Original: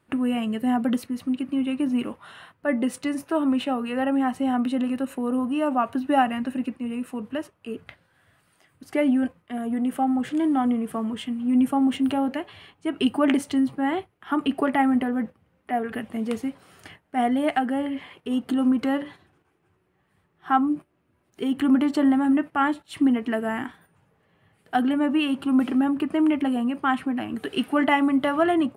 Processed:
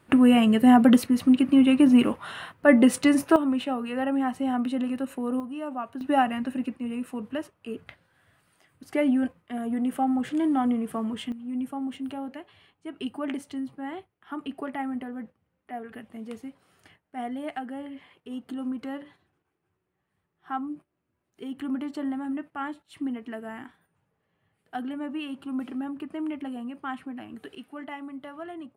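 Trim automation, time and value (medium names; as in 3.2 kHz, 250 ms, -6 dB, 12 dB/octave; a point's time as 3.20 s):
+7 dB
from 3.36 s -3 dB
from 5.40 s -10 dB
from 6.01 s -2 dB
from 11.32 s -11 dB
from 27.55 s -18 dB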